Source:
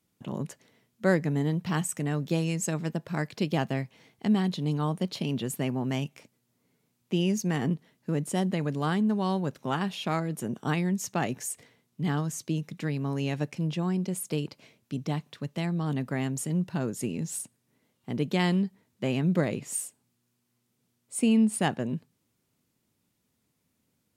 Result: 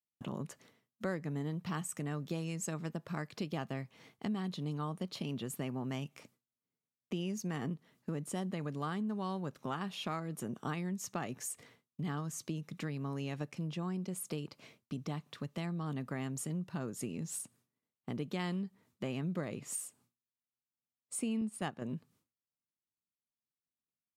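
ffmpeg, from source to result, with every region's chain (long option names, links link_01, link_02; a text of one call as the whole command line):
ffmpeg -i in.wav -filter_complex "[0:a]asettb=1/sr,asplit=3[link_01][link_02][link_03];[link_01]atrim=end=21.414[link_04];[link_02]atrim=start=21.41:end=21.82,asetpts=PTS-STARTPTS,afade=type=in:duration=0.004:curve=qsin,afade=type=out:start_time=0.406:duration=0.004:curve=qsin,agate=range=-8dB:threshold=-27dB:ratio=16:release=100:detection=peak,acompressor=mode=upward:threshold=-29dB:ratio=2.5:attack=3.2:release=140:knee=2.83:detection=peak[link_05];[link_03]atrim=start=21.816[link_06];[link_04][link_05]acrossfade=duration=0.004:curve1=hsin:curve2=qsin[link_07];[link_07][link_06]acrossfade=duration=0.004:curve1=qsin:curve2=hsin,equalizer=frequency=1200:width_type=o:width=0.32:gain=6.5,agate=range=-33dB:threshold=-56dB:ratio=3:detection=peak,acompressor=threshold=-40dB:ratio=2.5" out.wav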